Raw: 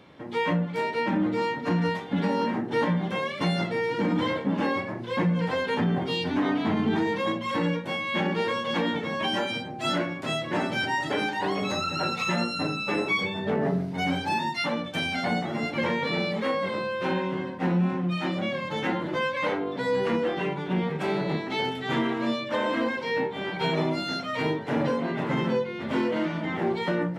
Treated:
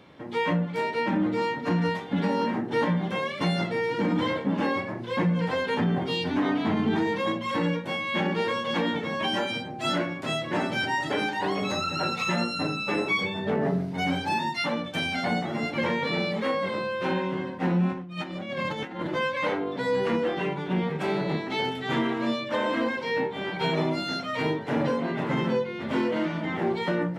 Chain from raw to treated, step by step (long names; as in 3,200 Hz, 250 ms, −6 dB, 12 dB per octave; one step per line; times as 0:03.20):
0:17.92–0:19.07: compressor whose output falls as the input rises −32 dBFS, ratio −0.5